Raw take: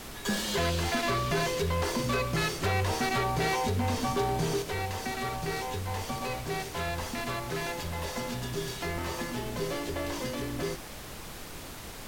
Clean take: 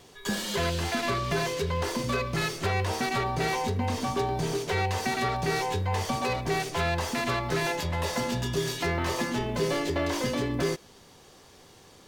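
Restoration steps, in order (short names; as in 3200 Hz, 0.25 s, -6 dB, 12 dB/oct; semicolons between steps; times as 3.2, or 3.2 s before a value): clip repair -22.5 dBFS; noise print and reduce 12 dB; gain 0 dB, from 4.62 s +6 dB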